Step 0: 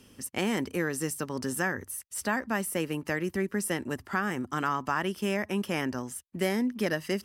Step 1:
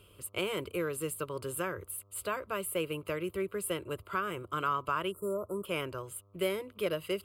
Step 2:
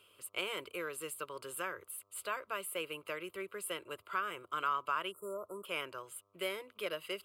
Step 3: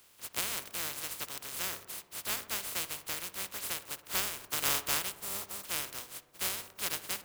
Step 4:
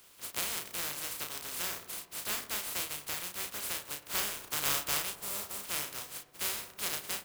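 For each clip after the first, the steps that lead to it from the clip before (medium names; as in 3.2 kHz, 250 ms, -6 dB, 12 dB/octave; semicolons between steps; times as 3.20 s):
spectral selection erased 5.11–5.65 s, 1.4–7 kHz; mains buzz 100 Hz, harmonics 13, -61 dBFS -6 dB/octave; static phaser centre 1.2 kHz, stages 8
high-pass 1.2 kHz 6 dB/octave; treble shelf 5.8 kHz -7 dB; trim +1 dB
spectral contrast reduction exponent 0.11; filtered feedback delay 61 ms, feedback 78%, low-pass 2.1 kHz, level -14 dB; trim +4 dB
in parallel at -2.5 dB: compression, threshold -42 dBFS, peak gain reduction 15.5 dB; on the sum: doubling 34 ms -5 dB; trim -3 dB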